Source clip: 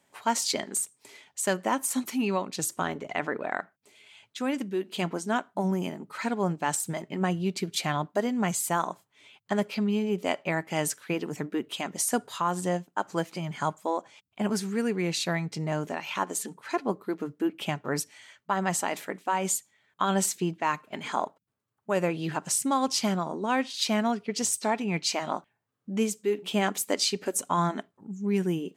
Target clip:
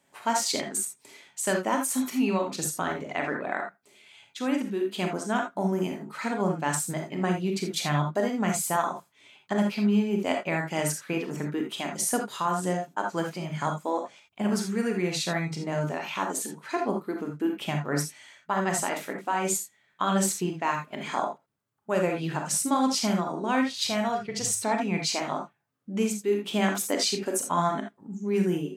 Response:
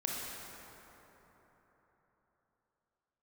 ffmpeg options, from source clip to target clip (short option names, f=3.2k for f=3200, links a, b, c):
-filter_complex "[0:a]asettb=1/sr,asplit=3[a][b][c];[a]atrim=end=23.684[d];[b]atrim=start=23.68:end=24.57,asetpts=PTS-STARTPTS,afade=t=in:d=0.004:c=qsin,afade=t=out:st=0.886:d=0.004:c=qsin,lowshelf=f=160:t=q:w=3:g=11.5[e];[c]atrim=start=24.566[f];[d][e]acrossfade=d=0.004:c1=hsin:c2=qsin[g];[g][f]acrossfade=d=0.004:c1=qsin:c2=hsin[h];[1:a]atrim=start_sample=2205,atrim=end_sample=3969[i];[h][i]afir=irnorm=-1:irlink=0"